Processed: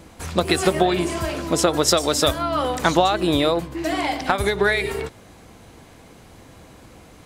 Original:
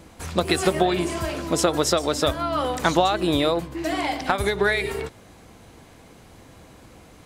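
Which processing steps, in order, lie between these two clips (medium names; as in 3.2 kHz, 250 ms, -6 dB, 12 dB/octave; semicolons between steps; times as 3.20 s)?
1.88–2.39 s: treble shelf 4.1 kHz +7.5 dB; trim +2 dB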